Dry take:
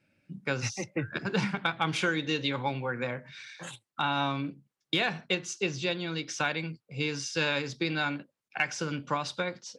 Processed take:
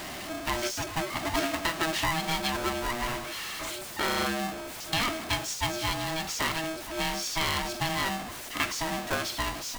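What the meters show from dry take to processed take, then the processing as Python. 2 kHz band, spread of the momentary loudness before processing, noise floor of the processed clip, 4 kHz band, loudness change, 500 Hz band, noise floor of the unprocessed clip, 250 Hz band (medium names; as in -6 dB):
0.0 dB, 11 LU, -40 dBFS, +3.0 dB, +1.5 dB, 0.0 dB, under -85 dBFS, -1.0 dB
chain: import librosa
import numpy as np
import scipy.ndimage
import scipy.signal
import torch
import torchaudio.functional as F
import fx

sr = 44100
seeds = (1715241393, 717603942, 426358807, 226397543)

y = x + 0.5 * 10.0 ** (-30.5 / 20.0) * np.sign(x)
y = y * np.sign(np.sin(2.0 * np.pi * 480.0 * np.arange(len(y)) / sr))
y = y * librosa.db_to_amplitude(-2.0)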